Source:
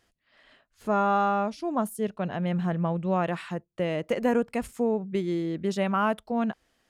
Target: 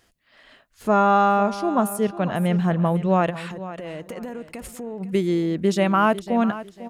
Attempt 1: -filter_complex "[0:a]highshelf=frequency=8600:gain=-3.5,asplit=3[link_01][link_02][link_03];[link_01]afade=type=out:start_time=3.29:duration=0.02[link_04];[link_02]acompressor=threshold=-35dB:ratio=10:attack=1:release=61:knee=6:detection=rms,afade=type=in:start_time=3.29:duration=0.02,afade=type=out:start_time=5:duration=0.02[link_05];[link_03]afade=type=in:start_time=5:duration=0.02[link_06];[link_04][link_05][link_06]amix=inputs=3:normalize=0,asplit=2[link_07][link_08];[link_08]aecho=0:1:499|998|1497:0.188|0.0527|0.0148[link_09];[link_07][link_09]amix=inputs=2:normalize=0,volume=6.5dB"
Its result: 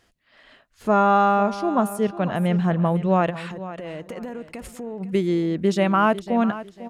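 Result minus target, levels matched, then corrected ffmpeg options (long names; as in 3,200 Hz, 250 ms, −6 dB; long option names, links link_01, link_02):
8,000 Hz band −4.0 dB
-filter_complex "[0:a]highshelf=frequency=8600:gain=4.5,asplit=3[link_01][link_02][link_03];[link_01]afade=type=out:start_time=3.29:duration=0.02[link_04];[link_02]acompressor=threshold=-35dB:ratio=10:attack=1:release=61:knee=6:detection=rms,afade=type=in:start_time=3.29:duration=0.02,afade=type=out:start_time=5:duration=0.02[link_05];[link_03]afade=type=in:start_time=5:duration=0.02[link_06];[link_04][link_05][link_06]amix=inputs=3:normalize=0,asplit=2[link_07][link_08];[link_08]aecho=0:1:499|998|1497:0.188|0.0527|0.0148[link_09];[link_07][link_09]amix=inputs=2:normalize=0,volume=6.5dB"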